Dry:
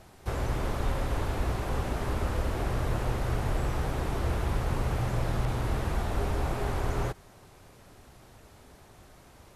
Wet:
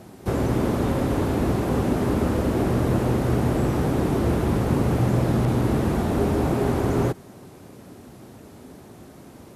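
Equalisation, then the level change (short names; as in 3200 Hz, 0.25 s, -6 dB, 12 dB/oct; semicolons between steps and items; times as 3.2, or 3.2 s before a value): HPF 66 Hz; bell 250 Hz +14 dB 2.1 oct; high shelf 8900 Hz +6.5 dB; +2.5 dB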